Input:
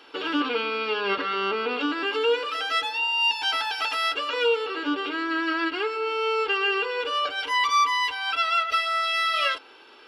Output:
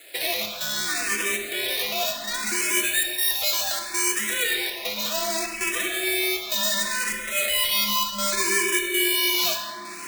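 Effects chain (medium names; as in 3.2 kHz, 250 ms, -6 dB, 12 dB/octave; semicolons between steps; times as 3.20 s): dead-time distortion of 0.091 ms; recorder AGC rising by 22 dB/s; steep high-pass 1.4 kHz 36 dB/octave; treble shelf 9 kHz +11.5 dB; in parallel at -0.5 dB: peak limiter -18.5 dBFS, peak gain reduction 9 dB; on the sum: trance gate "xxx.xxxxx.x" 99 bpm -12 dB; ring modulator 960 Hz; on a send at -2 dB: reverberation RT60 2.3 s, pre-delay 5 ms; on the sum: Chebyshev shaper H 8 -31 dB, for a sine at -5.5 dBFS; barber-pole phaser +0.67 Hz; trim +3 dB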